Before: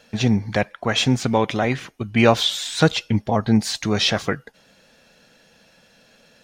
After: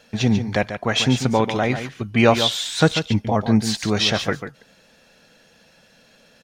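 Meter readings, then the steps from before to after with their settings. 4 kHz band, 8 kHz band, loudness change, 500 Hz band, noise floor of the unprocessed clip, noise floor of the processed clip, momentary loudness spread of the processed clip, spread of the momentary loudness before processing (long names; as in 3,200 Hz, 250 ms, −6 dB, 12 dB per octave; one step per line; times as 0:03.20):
+0.5 dB, +0.5 dB, +0.5 dB, +0.5 dB, −56 dBFS, −55 dBFS, 7 LU, 8 LU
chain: single-tap delay 142 ms −9.5 dB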